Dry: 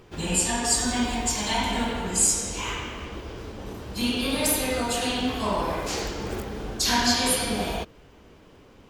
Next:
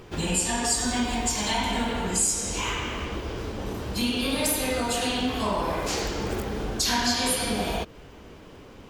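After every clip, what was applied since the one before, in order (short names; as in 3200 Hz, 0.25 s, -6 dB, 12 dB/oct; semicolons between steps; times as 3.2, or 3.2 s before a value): compressor 2:1, threshold -33 dBFS, peak gain reduction 9 dB; gain +5.5 dB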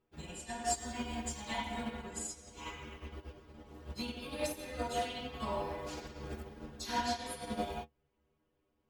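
bell 11000 Hz -6.5 dB 2.5 oct; metallic resonator 72 Hz, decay 0.31 s, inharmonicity 0.008; upward expander 2.5:1, over -49 dBFS; gain +2 dB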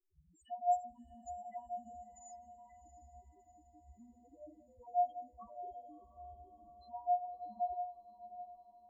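loudest bins only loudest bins 1; metallic resonator 340 Hz, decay 0.27 s, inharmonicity 0.03; diffused feedback echo 0.676 s, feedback 53%, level -13 dB; gain +15.5 dB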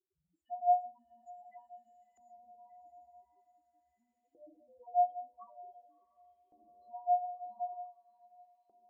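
LFO band-pass saw up 0.46 Hz 380–2600 Hz; on a send at -19 dB: reverb RT60 0.30 s, pre-delay 5 ms; on the sum: gain +3.5 dB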